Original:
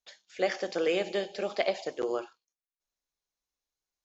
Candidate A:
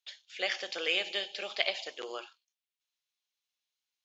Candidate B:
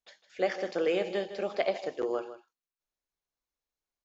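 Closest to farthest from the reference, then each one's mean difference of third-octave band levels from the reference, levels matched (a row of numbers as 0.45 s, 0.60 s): B, A; 2.0 dB, 5.5 dB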